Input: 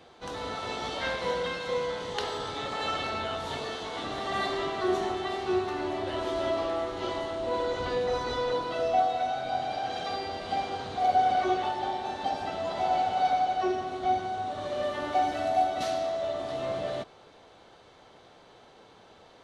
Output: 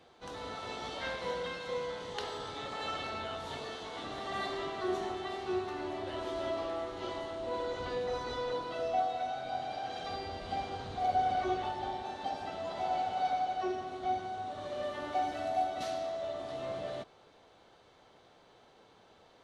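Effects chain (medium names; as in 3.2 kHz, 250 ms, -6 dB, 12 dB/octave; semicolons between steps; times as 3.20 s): 10.04–12.03 s: bass shelf 110 Hz +12 dB; trim -6.5 dB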